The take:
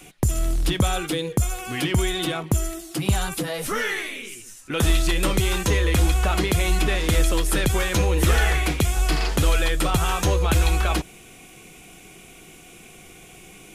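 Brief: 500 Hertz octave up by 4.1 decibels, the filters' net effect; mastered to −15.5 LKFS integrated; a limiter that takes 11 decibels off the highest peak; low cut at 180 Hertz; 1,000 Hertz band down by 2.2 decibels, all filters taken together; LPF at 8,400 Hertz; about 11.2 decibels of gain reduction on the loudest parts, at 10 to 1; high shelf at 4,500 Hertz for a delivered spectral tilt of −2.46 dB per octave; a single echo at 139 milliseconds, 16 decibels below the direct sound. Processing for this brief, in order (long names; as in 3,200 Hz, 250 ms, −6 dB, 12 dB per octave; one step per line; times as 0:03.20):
high-pass filter 180 Hz
low-pass filter 8,400 Hz
parametric band 500 Hz +6.5 dB
parametric band 1,000 Hz −6.5 dB
high-shelf EQ 4,500 Hz +8 dB
downward compressor 10 to 1, threshold −29 dBFS
brickwall limiter −22.5 dBFS
single-tap delay 139 ms −16 dB
level +18 dB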